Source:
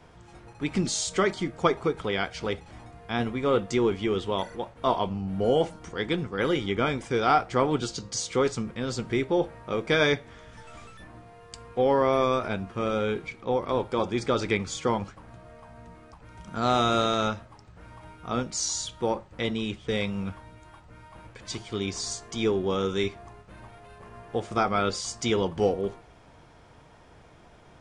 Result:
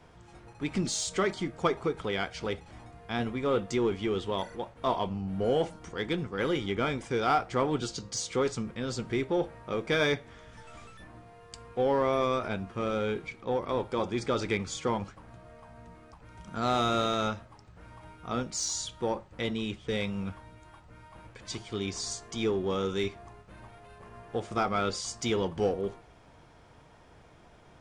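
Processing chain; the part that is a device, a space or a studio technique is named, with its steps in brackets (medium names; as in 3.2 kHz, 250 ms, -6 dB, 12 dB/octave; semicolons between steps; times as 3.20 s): parallel distortion (in parallel at -8.5 dB: hard clipper -25 dBFS, distortion -8 dB); on the sum: trim -5.5 dB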